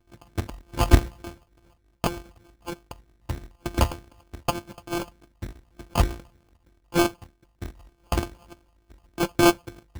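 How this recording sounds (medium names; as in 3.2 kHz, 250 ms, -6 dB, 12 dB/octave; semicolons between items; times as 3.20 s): a buzz of ramps at a fixed pitch in blocks of 128 samples; phasing stages 6, 3.3 Hz, lowest notch 380–2400 Hz; aliases and images of a low sample rate 1.9 kHz, jitter 0%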